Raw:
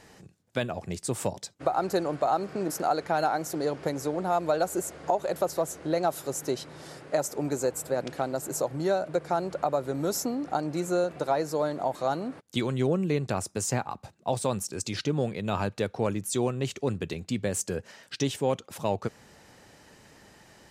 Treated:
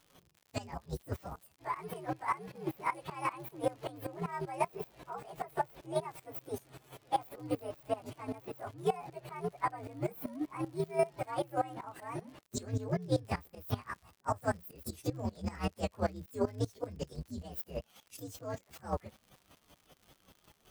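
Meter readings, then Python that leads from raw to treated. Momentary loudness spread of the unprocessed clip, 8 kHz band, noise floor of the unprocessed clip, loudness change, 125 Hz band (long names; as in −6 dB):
6 LU, −17.0 dB, −59 dBFS, −9.0 dB, −7.0 dB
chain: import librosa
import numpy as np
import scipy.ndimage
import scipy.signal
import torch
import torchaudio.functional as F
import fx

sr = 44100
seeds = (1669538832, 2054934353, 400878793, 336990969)

y = fx.partial_stretch(x, sr, pct=129)
y = fx.volume_shaper(y, sr, bpm=155, per_beat=2, depth_db=-18, release_ms=149.0, shape='slow start')
y = fx.dmg_crackle(y, sr, seeds[0], per_s=110.0, level_db=-49.0)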